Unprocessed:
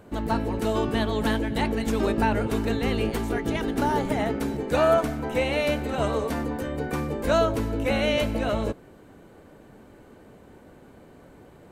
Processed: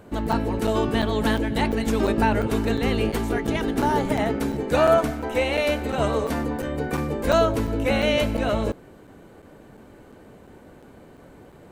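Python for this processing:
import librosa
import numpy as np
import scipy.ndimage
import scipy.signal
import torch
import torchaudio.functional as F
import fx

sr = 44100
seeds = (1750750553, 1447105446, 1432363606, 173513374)

y = fx.peak_eq(x, sr, hz=150.0, db=-13.0, octaves=0.68, at=(5.11, 5.85))
y = fx.buffer_crackle(y, sr, first_s=0.32, period_s=0.35, block=256, kind='zero')
y = F.gain(torch.from_numpy(y), 2.5).numpy()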